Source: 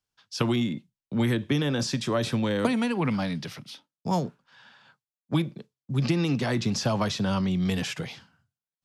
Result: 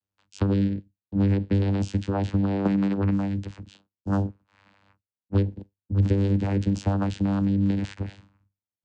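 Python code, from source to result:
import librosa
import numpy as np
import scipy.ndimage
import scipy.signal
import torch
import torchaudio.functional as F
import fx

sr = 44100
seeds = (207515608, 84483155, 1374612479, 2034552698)

y = fx.vocoder(x, sr, bands=8, carrier='saw', carrier_hz=98.7)
y = F.gain(torch.from_numpy(y), 3.5).numpy()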